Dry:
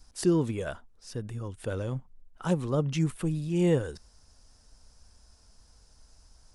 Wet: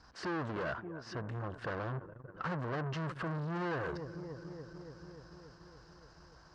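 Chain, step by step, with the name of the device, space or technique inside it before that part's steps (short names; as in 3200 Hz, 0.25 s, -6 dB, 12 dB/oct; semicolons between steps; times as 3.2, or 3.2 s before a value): 1.29–2.74 low shelf 130 Hz +6 dB; analogue delay pedal into a guitar amplifier (analogue delay 0.288 s, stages 4096, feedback 71%, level -23.5 dB; tube stage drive 42 dB, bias 0.25; speaker cabinet 85–4400 Hz, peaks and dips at 93 Hz -7 dB, 230 Hz -5 dB, 1100 Hz +7 dB, 1600 Hz +7 dB, 2400 Hz -5 dB, 3500 Hz -8 dB); gain +7 dB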